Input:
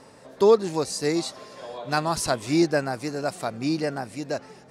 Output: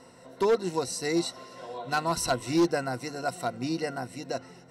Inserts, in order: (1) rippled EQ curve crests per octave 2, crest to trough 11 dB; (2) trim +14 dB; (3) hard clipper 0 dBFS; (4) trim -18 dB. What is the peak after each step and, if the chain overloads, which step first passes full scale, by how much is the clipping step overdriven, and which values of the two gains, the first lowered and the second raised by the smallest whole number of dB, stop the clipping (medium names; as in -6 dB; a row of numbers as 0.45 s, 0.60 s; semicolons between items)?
-6.5 dBFS, +7.5 dBFS, 0.0 dBFS, -18.0 dBFS; step 2, 7.5 dB; step 2 +6 dB, step 4 -10 dB